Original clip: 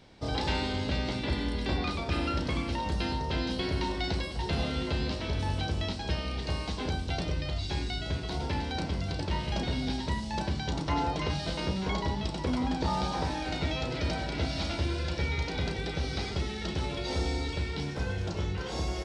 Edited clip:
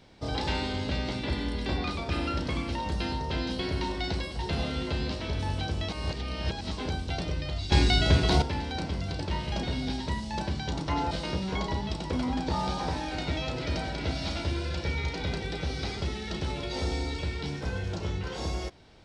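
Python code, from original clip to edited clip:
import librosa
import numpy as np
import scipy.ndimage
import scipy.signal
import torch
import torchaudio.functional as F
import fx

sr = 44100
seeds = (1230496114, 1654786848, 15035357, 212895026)

y = fx.edit(x, sr, fx.reverse_span(start_s=5.89, length_s=0.82),
    fx.clip_gain(start_s=7.72, length_s=0.7, db=11.0),
    fx.cut(start_s=11.11, length_s=0.34), tone=tone)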